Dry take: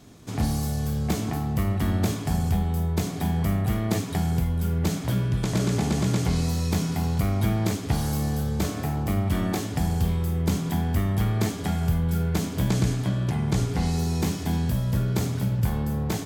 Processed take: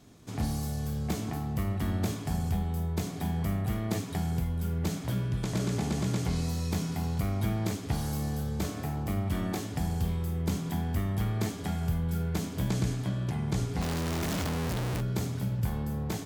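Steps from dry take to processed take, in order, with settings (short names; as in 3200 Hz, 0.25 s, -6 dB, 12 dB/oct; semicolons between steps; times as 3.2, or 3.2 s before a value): 13.81–15.01 Schmitt trigger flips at -41.5 dBFS; gain -6 dB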